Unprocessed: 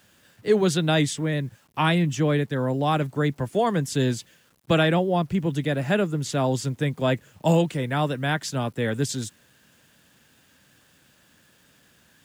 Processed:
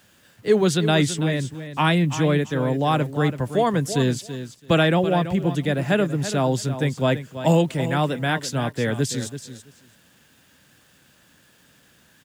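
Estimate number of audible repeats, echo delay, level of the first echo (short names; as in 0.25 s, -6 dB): 2, 0.332 s, -11.5 dB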